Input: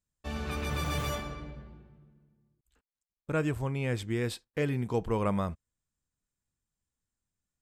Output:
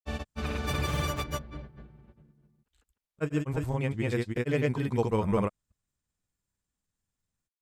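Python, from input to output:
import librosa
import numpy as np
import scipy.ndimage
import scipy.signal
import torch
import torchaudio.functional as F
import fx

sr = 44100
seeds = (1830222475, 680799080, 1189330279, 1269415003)

y = fx.granulator(x, sr, seeds[0], grain_ms=100.0, per_s=20.0, spray_ms=248.0, spread_st=0)
y = y * 10.0 ** (3.5 / 20.0)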